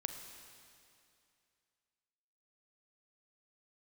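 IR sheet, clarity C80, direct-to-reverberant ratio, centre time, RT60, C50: 7.5 dB, 6.0 dB, 44 ms, 2.5 s, 6.5 dB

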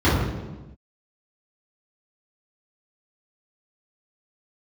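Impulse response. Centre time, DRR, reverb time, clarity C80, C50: 77 ms, -12.0 dB, no single decay rate, 3.5 dB, 0.0 dB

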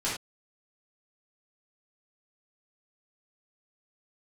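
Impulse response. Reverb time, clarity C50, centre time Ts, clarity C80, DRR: no single decay rate, 2.5 dB, 39 ms, 8.5 dB, -10.0 dB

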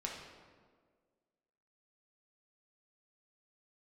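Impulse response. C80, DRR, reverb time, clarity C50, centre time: 5.0 dB, -2.0 dB, 1.7 s, 2.5 dB, 59 ms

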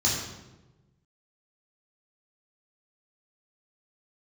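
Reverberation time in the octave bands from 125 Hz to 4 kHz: 1.7 s, 1.4 s, 1.3 s, 0.95 s, 0.85 s, 0.75 s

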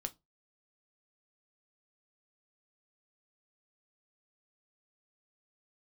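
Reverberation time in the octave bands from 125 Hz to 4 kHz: 0.30 s, 0.25 s, 0.25 s, 0.20 s, 0.15 s, 0.15 s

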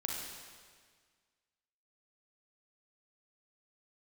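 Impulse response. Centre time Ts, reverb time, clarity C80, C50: 90 ms, 1.7 s, 2.5 dB, 0.0 dB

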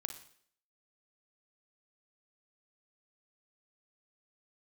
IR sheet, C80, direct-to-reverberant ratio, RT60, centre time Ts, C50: 13.0 dB, 6.0 dB, 0.60 s, 14 ms, 8.5 dB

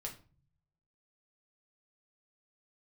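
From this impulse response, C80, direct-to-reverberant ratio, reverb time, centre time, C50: 16.5 dB, -0.5 dB, 0.40 s, 16 ms, 11.0 dB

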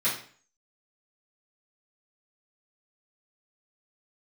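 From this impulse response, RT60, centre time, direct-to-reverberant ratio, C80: 0.45 s, 31 ms, -12.5 dB, 10.5 dB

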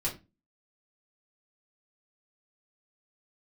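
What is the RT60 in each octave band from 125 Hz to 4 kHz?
0.40 s, 0.40 s, 0.25 s, 0.25 s, 0.25 s, 0.20 s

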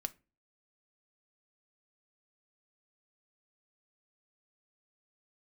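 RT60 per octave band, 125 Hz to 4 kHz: 0.45 s, 0.45 s, 0.35 s, 0.25 s, 0.25 s, 0.20 s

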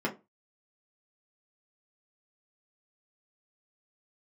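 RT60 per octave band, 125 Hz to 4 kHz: 0.30 s, 0.25 s, 0.25 s, 0.25 s, 0.20 s, 0.15 s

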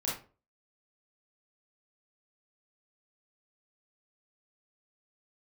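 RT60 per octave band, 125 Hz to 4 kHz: 0.45 s, 0.40 s, 0.40 s, 0.35 s, 0.30 s, 0.25 s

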